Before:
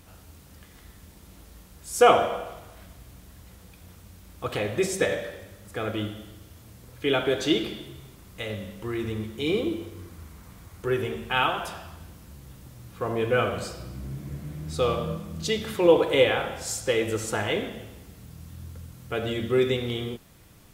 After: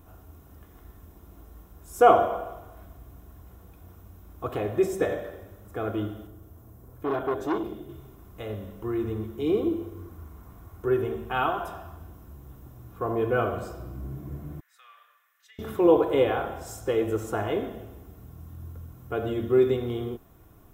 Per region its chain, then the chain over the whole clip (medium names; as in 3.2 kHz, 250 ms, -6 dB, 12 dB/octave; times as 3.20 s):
6.27–7.89 s: peaking EQ 3 kHz -7 dB 1.9 oct + transformer saturation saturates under 1.5 kHz
14.60–15.59 s: ladder high-pass 1.7 kHz, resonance 75% + compression 2:1, threshold -45 dBFS + band-stop 5.2 kHz, Q 30
whole clip: high-order bell 4.4 kHz -12 dB 2.9 oct; band-stop 4.5 kHz, Q 5.1; comb 2.8 ms, depth 38%